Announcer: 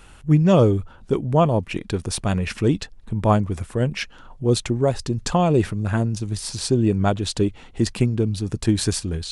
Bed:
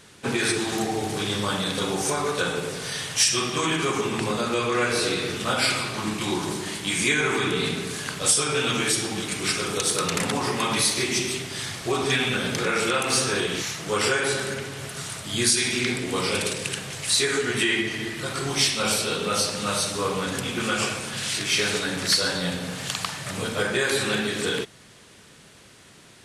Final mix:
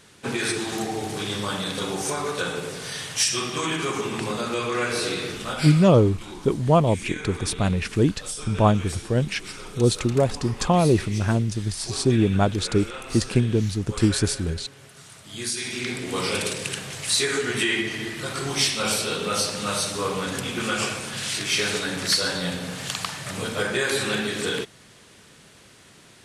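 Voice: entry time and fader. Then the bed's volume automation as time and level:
5.35 s, −0.5 dB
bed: 0:05.25 −2 dB
0:06.08 −13 dB
0:15.04 −13 dB
0:16.21 −0.5 dB

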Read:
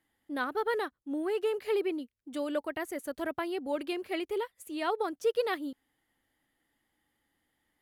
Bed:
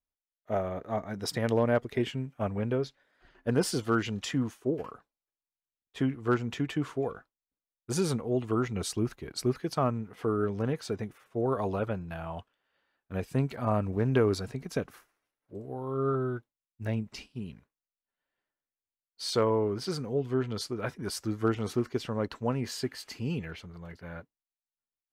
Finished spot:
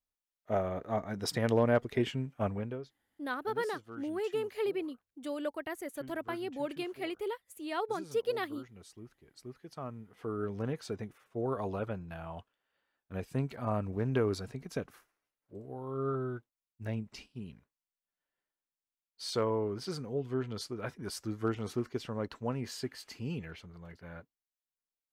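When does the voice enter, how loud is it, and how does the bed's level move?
2.90 s, −3.5 dB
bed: 0:02.49 −1 dB
0:03.01 −20.5 dB
0:09.33 −20.5 dB
0:10.56 −5 dB

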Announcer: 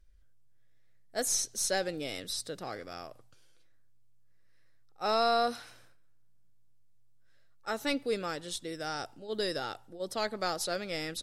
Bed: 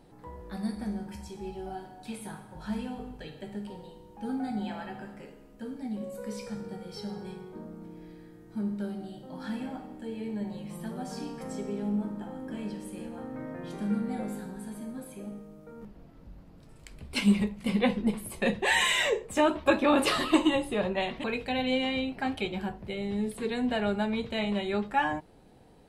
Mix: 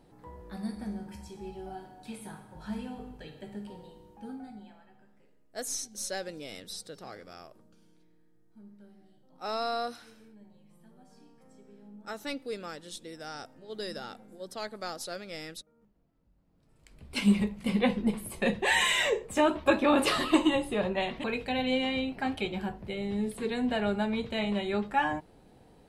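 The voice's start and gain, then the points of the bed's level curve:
4.40 s, −5.0 dB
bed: 0:04.08 −3 dB
0:04.84 −20.5 dB
0:16.35 −20.5 dB
0:17.26 −0.5 dB

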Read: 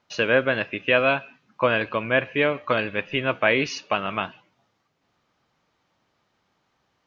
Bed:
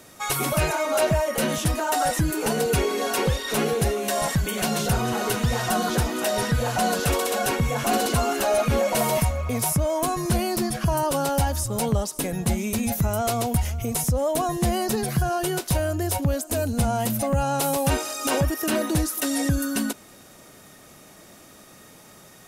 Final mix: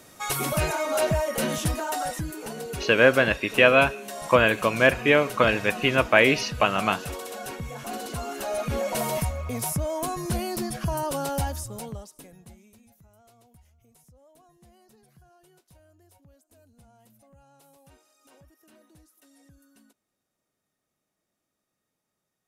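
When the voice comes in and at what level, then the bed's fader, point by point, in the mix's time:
2.70 s, +2.5 dB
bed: 0:01.67 −2.5 dB
0:02.49 −12 dB
0:08.01 −12 dB
0:08.90 −5 dB
0:11.46 −5 dB
0:12.92 −34 dB

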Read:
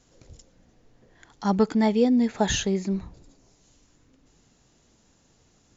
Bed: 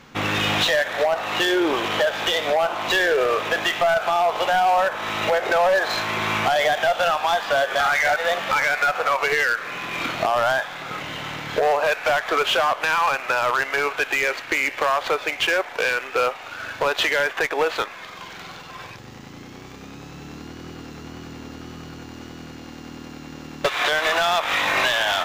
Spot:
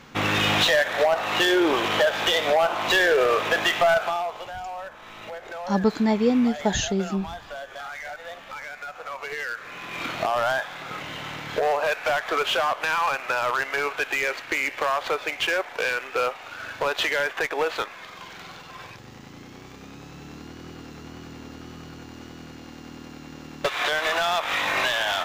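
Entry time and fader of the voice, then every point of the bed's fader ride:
4.25 s, 0.0 dB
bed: 0:03.94 0 dB
0:04.50 −16.5 dB
0:08.87 −16.5 dB
0:10.15 −3.5 dB

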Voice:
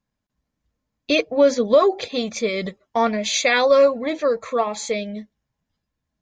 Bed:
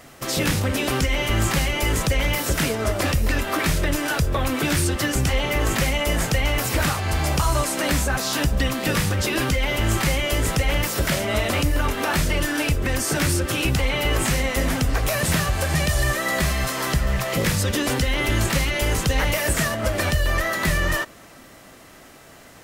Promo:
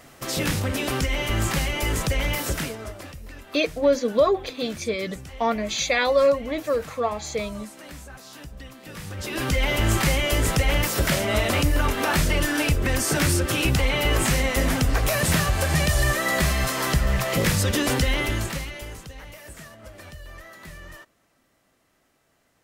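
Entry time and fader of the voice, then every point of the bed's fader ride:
2.45 s, −4.0 dB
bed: 0:02.47 −3 dB
0:03.14 −19.5 dB
0:08.86 −19.5 dB
0:09.58 0 dB
0:18.11 0 dB
0:19.14 −20.5 dB

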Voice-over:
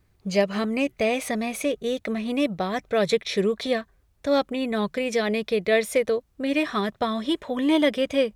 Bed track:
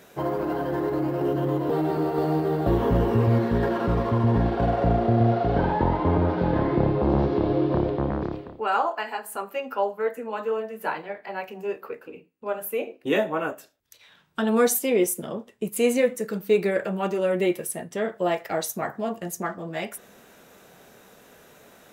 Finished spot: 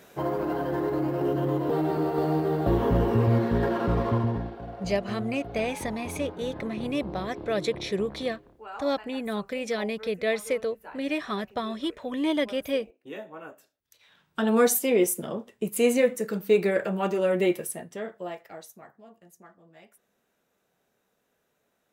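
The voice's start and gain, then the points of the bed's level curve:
4.55 s, −5.5 dB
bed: 0:04.15 −1.5 dB
0:04.60 −16.5 dB
0:13.30 −16.5 dB
0:14.46 −0.5 dB
0:17.53 −0.5 dB
0:19.00 −22.5 dB

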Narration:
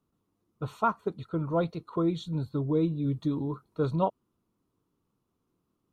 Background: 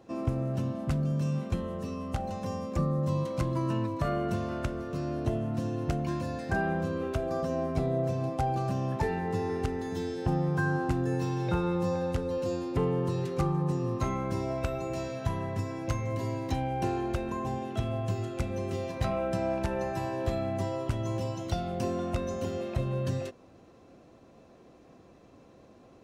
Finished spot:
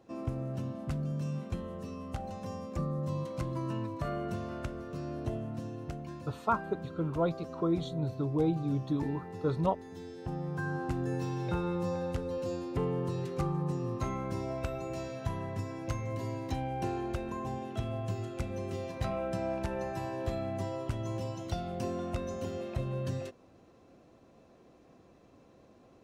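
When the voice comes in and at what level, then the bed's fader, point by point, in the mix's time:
5.65 s, −2.5 dB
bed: 0:05.34 −5.5 dB
0:06.27 −12.5 dB
0:09.87 −12.5 dB
0:11.04 −4 dB

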